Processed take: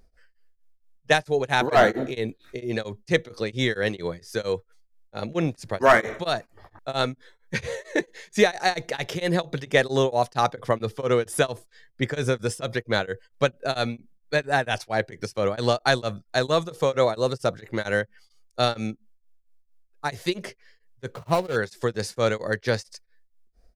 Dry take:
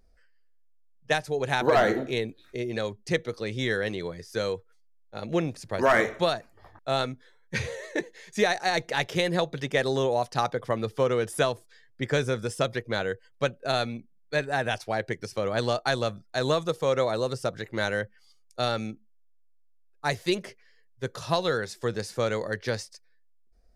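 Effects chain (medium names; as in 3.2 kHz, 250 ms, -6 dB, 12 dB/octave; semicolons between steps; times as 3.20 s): 21.10–21.56 s: median filter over 25 samples; tremolo of two beating tones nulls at 4.4 Hz; trim +6 dB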